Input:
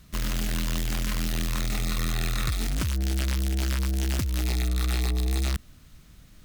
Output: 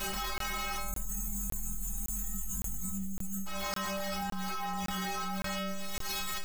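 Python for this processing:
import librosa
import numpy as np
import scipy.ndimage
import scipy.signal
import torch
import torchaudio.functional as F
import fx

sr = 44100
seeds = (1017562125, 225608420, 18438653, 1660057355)

y = fx.halfwave_hold(x, sr)
y = fx.tilt_shelf(y, sr, db=-6.0, hz=1100.0)
y = fx.formant_shift(y, sr, semitones=-4)
y = fx.quant_float(y, sr, bits=2)
y = fx.graphic_eq_31(y, sr, hz=(800, 1250, 10000), db=(9, 10, -8))
y = fx.echo_wet_highpass(y, sr, ms=652, feedback_pct=69, hz=2600.0, wet_db=-20.5)
y = fx.chorus_voices(y, sr, voices=4, hz=0.8, base_ms=25, depth_ms=4.2, mix_pct=65)
y = fx.dmg_crackle(y, sr, seeds[0], per_s=450.0, level_db=-41.0)
y = fx.spec_box(y, sr, start_s=0.79, length_s=2.67, low_hz=270.0, high_hz=6100.0, gain_db=-29)
y = fx.stiff_resonator(y, sr, f0_hz=190.0, decay_s=0.68, stiffness=0.008)
y = fx.buffer_crackle(y, sr, first_s=0.38, period_s=0.56, block=1024, kind='zero')
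y = fx.env_flatten(y, sr, amount_pct=100)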